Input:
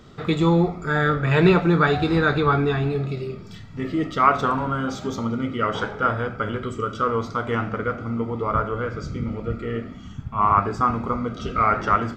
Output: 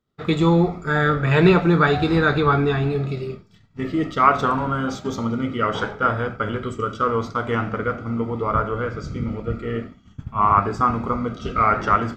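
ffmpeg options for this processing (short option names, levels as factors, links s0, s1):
-af "agate=range=0.0224:threshold=0.0398:ratio=3:detection=peak,volume=1.19"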